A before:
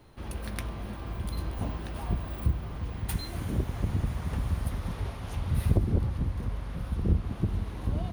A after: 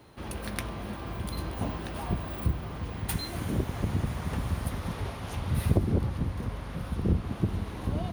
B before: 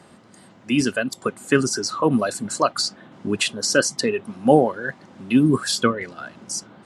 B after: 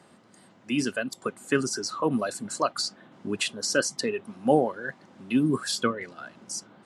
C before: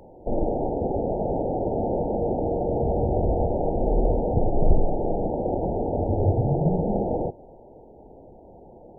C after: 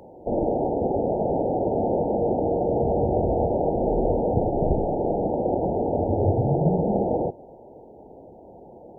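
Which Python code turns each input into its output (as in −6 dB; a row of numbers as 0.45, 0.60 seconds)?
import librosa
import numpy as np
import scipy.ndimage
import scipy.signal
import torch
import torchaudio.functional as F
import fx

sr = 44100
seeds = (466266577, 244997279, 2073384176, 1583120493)

y = fx.highpass(x, sr, hz=120.0, slope=6)
y = y * 10.0 ** (-9 / 20.0) / np.max(np.abs(y))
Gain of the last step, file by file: +3.5, −6.0, +2.5 decibels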